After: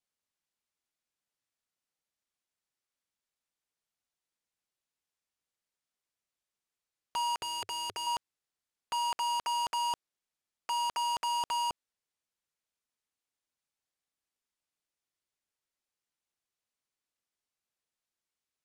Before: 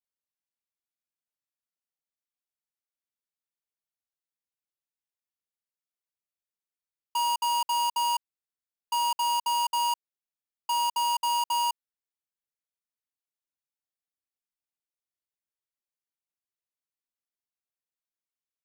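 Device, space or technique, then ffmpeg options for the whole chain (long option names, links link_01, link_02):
overflowing digital effects unit: -filter_complex "[0:a]aeval=exprs='(mod(56.2*val(0)+1,2)-1)/56.2':channel_layout=same,lowpass=9900,asettb=1/sr,asplit=3[link_01][link_02][link_03];[link_01]atrim=end=7.394[link_04];[link_02]atrim=start=7.39:end=8.07,asetpts=PTS-STARTPTS,afade=type=in:duration=0.004:curve=qsin,afade=type=out:start_time=0.676:duration=0.004:curve=qsin,equalizer=frequency=100:width_type=o:width=0.67:gain=12,equalizer=frequency=400:width_type=o:width=0.67:gain=10,equalizer=frequency=1000:width_type=o:width=0.67:gain=-9[link_05];[link_03]atrim=start=8.066[link_06];[link_04][link_05]acrossfade=duration=0.004:curve1=hsin:curve2=qsin[link_07];[link_07][link_06]acrossfade=duration=0.004:curve1=qsin:curve2=hsin,volume=5dB"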